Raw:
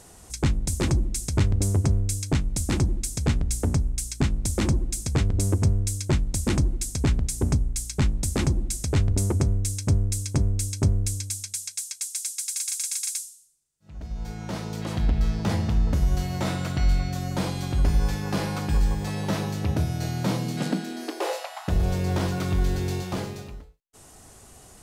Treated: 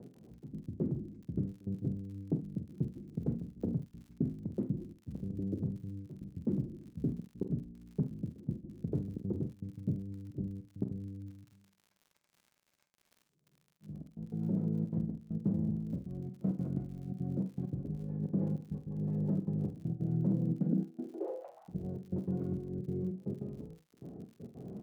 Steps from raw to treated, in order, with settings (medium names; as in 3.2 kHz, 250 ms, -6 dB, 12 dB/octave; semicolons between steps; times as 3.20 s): rotary cabinet horn 6 Hz, later 0.75 Hz, at 21.41 s; reverse; upward compressor, threshold -29 dBFS; reverse; trance gate "x.xxx..x.xxxxxx" 198 bpm -24 dB; compression 6:1, threshold -29 dBFS, peak gain reduction 12 dB; Butterworth band-pass 250 Hz, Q 0.73; doubling 31 ms -12.5 dB; crackle 56 per s -49 dBFS; peaking EQ 180 Hz +6.5 dB 0.91 oct; on a send: early reflections 47 ms -10 dB, 74 ms -15.5 dB; on the sum: trim -2 dB